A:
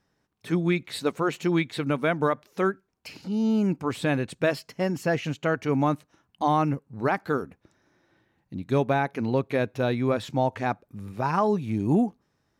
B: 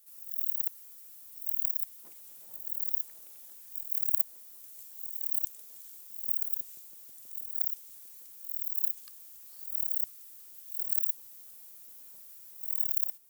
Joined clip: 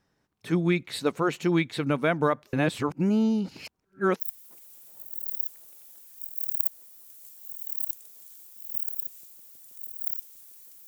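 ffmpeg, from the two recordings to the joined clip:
-filter_complex "[0:a]apad=whole_dur=10.87,atrim=end=10.87,asplit=2[s0][s1];[s0]atrim=end=2.532[s2];[s1]atrim=start=2.528:end=4.202,asetpts=PTS-STARTPTS,areverse[s3];[1:a]atrim=start=1.738:end=8.41[s4];[s2][s3]acrossfade=d=0.004:c1=hsin:c2=hsin[s5];[s5][s4]acrossfade=d=0.004:c1=hsin:c2=hsin"

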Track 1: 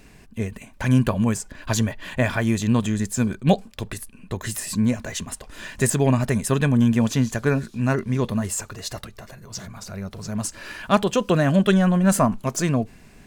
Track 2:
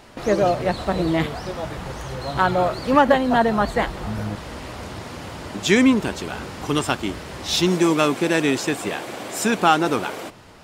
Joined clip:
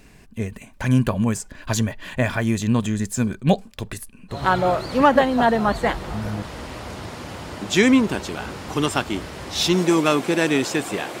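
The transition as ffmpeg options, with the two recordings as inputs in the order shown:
-filter_complex "[0:a]apad=whole_dur=11.2,atrim=end=11.2,atrim=end=4.44,asetpts=PTS-STARTPTS[s0];[1:a]atrim=start=2.21:end=9.13,asetpts=PTS-STARTPTS[s1];[s0][s1]acrossfade=d=0.16:c1=tri:c2=tri"

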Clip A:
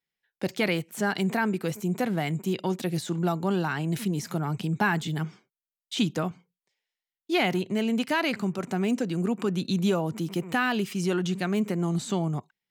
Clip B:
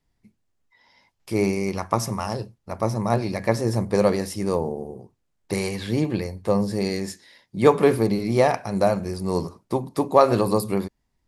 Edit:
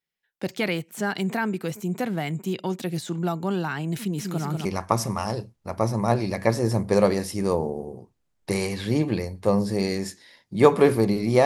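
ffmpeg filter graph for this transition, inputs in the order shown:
-filter_complex "[0:a]asettb=1/sr,asplit=3[s0][s1][s2];[s0]atrim=end=3.994[s3];[s1]atrim=start=3.99:end=4.65,asetpts=PTS-STARTPTS,afade=t=in:d=0.004:c=qsin,afade=t=out:st=0.656:d=0.004:c=qsin,aecho=1:1:192|384|576|768|960|1152:0.562|0.287|0.146|0.0746|0.038|0.0194,atrim=end_sample=29106[s4];[s2]atrim=start=4.646[s5];[s3][s4]acrossfade=d=0.004:c1=hsin:c2=qsin[s6];[s6][s5]acrossfade=d=0.004:c1=qsin:c2=hsin,apad=whole_dur=11.45,atrim=end=11.45,atrim=end=4.652[s7];[1:a]atrim=start=1.668:end=8.47[s8];[s7][s8]acrossfade=d=0.004:c1=hsin:c2=hsin"

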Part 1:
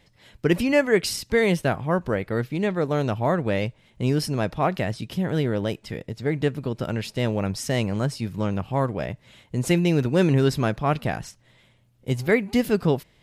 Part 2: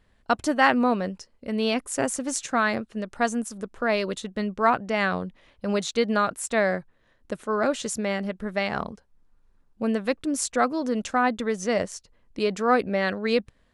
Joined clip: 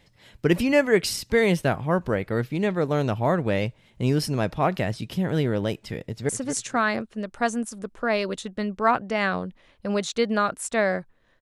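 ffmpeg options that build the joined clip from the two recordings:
-filter_complex "[0:a]apad=whole_dur=11.41,atrim=end=11.41,atrim=end=6.292[s0];[1:a]atrim=start=2.078:end=7.2[s1];[s0][s1]acrossfade=d=0.004:c1=hsin:c2=hsin,asplit=2[s2][s3];[s3]afade=t=in:st=5.99:d=0.01,afade=t=out:st=6.29:d=0.01,aecho=0:1:240|480|720:0.281838|0.0845515|0.0253654[s4];[s2][s4]amix=inputs=2:normalize=0"

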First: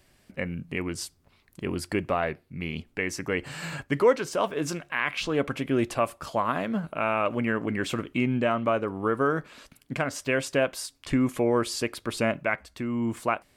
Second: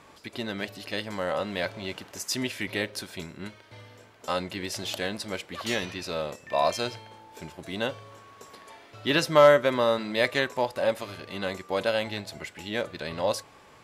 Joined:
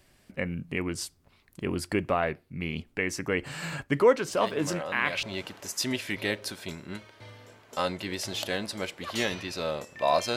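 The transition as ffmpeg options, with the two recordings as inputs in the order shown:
-filter_complex "[1:a]asplit=2[s0][s1];[0:a]apad=whole_dur=10.36,atrim=end=10.36,atrim=end=5.232[s2];[s1]atrim=start=1.738:end=6.87[s3];[s0]atrim=start=0.79:end=1.74,asetpts=PTS-STARTPTS,volume=0.447,afade=t=in:d=0.004:c=hsin,afade=t=out:st=0.946:d=0.004:c=hsin,adelay=4280[s4];[s2][s3]acrossfade=d=0.004:c1=hsin:c2=hsin[s5];[s5][s4]amix=inputs=2:normalize=0"

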